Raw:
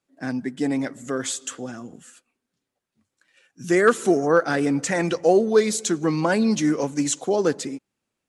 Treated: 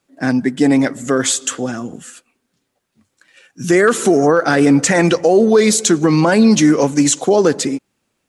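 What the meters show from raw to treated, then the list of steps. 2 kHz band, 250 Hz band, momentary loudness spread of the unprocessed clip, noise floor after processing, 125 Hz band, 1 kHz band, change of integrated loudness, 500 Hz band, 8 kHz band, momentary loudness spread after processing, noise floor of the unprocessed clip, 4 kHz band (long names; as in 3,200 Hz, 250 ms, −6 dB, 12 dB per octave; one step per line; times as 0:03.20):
+7.5 dB, +10.0 dB, 14 LU, −71 dBFS, +10.5 dB, +7.0 dB, +8.0 dB, +7.0 dB, +10.5 dB, 11 LU, −83 dBFS, +10.5 dB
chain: boost into a limiter +14 dB
level −2.5 dB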